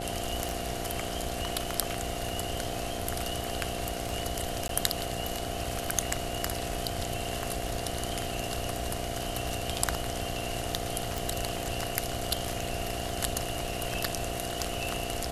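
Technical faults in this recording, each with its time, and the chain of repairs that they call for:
buzz 60 Hz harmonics 13 -38 dBFS
tick 33 1/3 rpm
whine 690 Hz -39 dBFS
4.68–4.69 s: dropout 12 ms
11.18 s: pop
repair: de-click; band-stop 690 Hz, Q 30; de-hum 60 Hz, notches 13; interpolate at 4.68 s, 12 ms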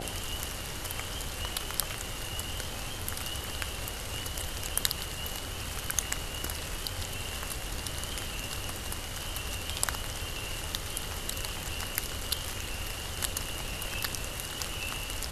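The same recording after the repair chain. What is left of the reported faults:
nothing left

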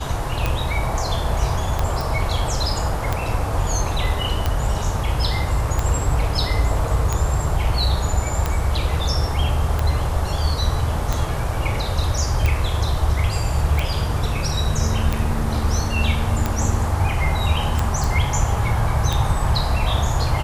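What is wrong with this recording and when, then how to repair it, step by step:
tick 45 rpm -7 dBFS
2.01 s: pop
18.04 s: pop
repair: de-click

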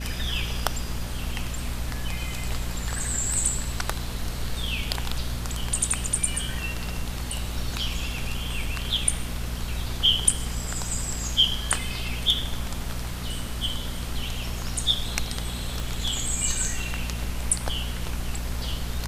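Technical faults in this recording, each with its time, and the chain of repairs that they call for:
hum 60 Hz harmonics 4 -33 dBFS
15.80 s: pop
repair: de-click; de-hum 60 Hz, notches 4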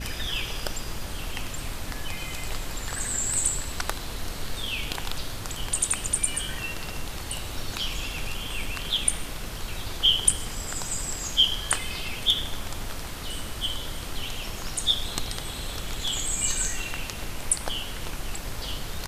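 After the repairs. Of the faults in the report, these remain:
15.80 s: pop

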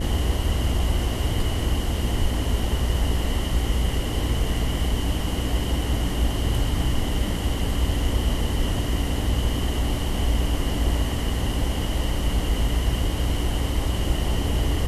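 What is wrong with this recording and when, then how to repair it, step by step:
buzz 60 Hz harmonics 11 -27 dBFS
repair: de-hum 60 Hz, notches 11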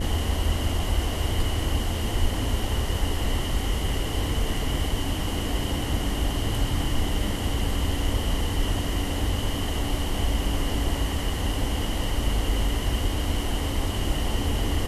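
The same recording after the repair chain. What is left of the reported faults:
nothing left

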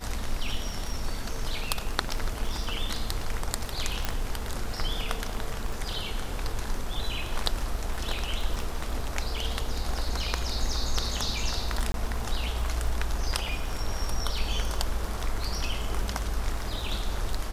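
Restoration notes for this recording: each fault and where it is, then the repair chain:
crackle 25 per s -34 dBFS
4.05 s: pop
11.92–11.94 s: dropout 22 ms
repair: de-click; interpolate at 11.92 s, 22 ms

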